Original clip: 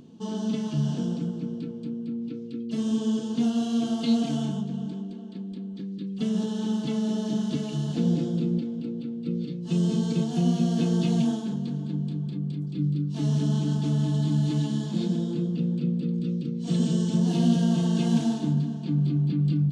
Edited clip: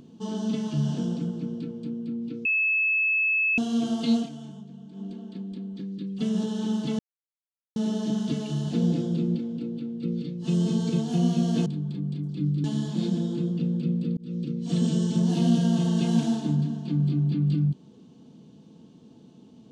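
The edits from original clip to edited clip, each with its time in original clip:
0:02.45–0:03.58: beep over 2,600 Hz −20.5 dBFS
0:04.16–0:05.06: duck −12.5 dB, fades 0.14 s
0:06.99: splice in silence 0.77 s
0:10.89–0:12.04: remove
0:13.02–0:14.62: remove
0:16.15–0:16.41: fade in

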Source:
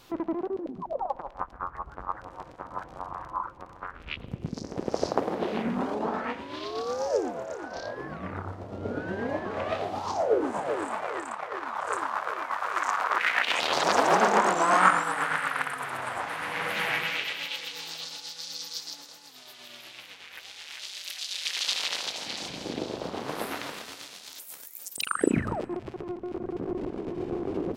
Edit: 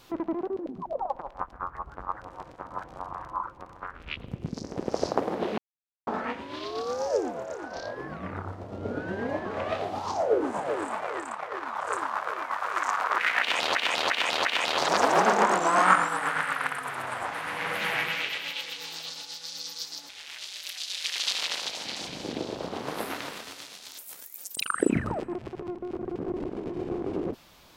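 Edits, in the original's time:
0:05.58–0:06.07: silence
0:13.40–0:13.75: repeat, 4 plays
0:19.04–0:20.50: remove

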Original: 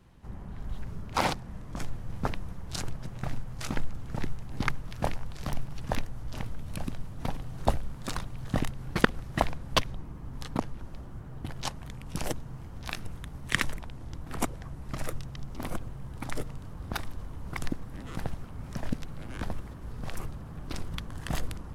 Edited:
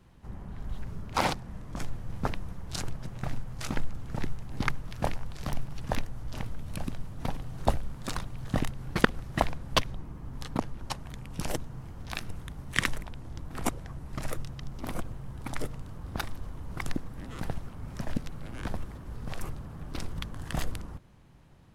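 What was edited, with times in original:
0:10.90–0:11.66: remove

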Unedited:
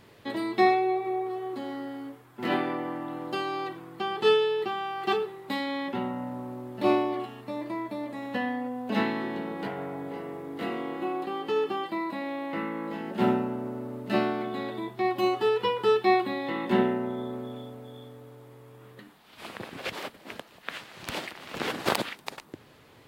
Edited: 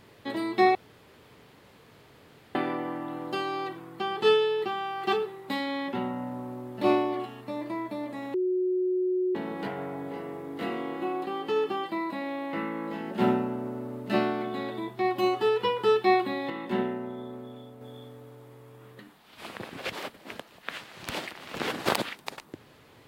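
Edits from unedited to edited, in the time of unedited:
0:00.75–0:02.55: fill with room tone
0:08.34–0:09.35: beep over 367 Hz −23.5 dBFS
0:16.50–0:17.81: clip gain −5 dB

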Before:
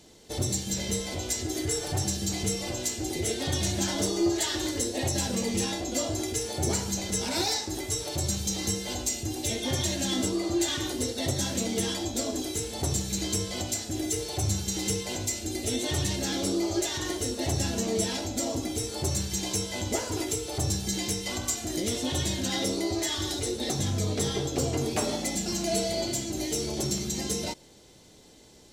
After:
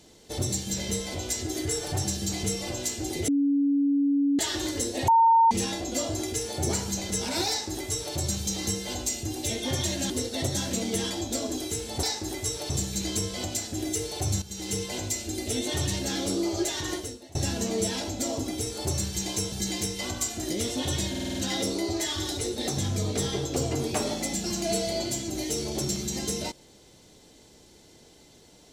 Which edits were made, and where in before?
0:03.28–0:04.39: beep over 282 Hz −20 dBFS
0:05.08–0:05.51: beep over 912 Hz −15 dBFS
0:07.49–0:08.16: duplicate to 0:12.87
0:10.10–0:10.94: remove
0:14.59–0:15.00: fade in, from −13 dB
0:17.11–0:17.52: fade out quadratic, to −22 dB
0:19.69–0:20.79: remove
0:22.37: stutter 0.05 s, 6 plays

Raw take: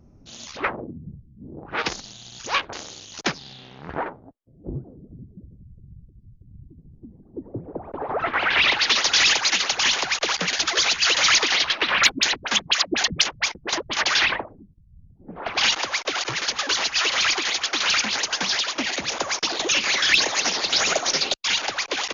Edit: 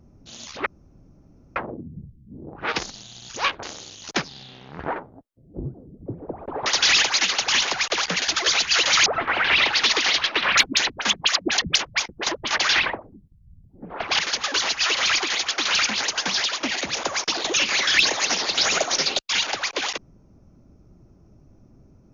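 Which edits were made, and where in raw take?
0:00.66: splice in room tone 0.90 s
0:05.16–0:07.52: remove
0:08.12–0:08.97: move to 0:11.37
0:15.65–0:16.34: remove

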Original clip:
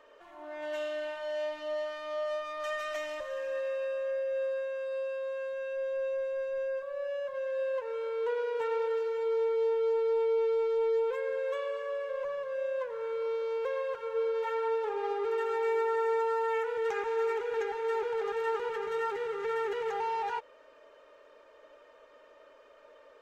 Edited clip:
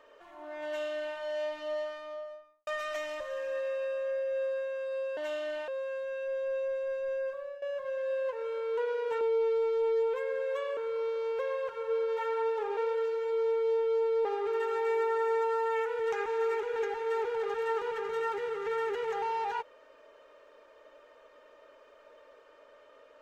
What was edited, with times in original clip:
0:00.66–0:01.17: duplicate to 0:05.17
0:01.70–0:02.67: fade out and dull
0:06.85–0:07.11: fade out, to −15.5 dB
0:08.70–0:10.18: move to 0:15.03
0:11.74–0:13.03: remove

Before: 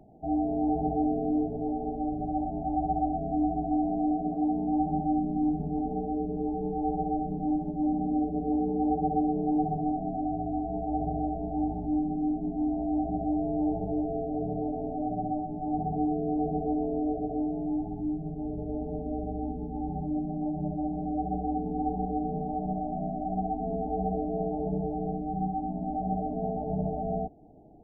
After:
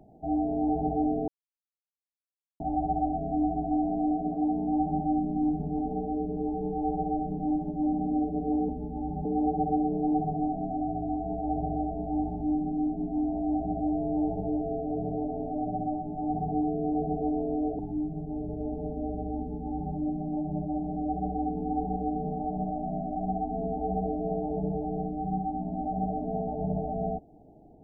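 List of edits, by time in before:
0:01.28–0:02.60: silence
0:17.23–0:17.88: remove
0:19.48–0:20.04: duplicate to 0:08.69

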